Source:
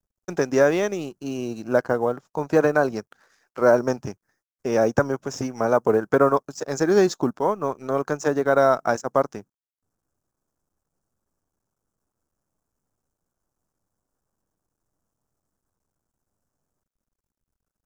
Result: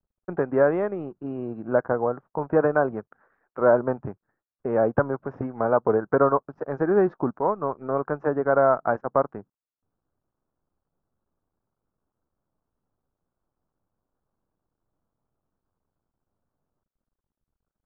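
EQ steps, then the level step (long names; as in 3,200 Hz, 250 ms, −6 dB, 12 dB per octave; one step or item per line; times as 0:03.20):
low-pass filter 1,500 Hz 24 dB per octave
dynamic equaliser 280 Hz, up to −3 dB, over −30 dBFS, Q 0.72
0.0 dB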